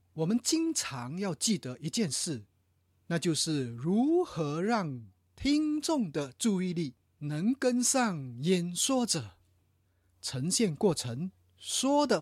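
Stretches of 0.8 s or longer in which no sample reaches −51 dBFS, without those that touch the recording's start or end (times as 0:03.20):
0:09.32–0:10.23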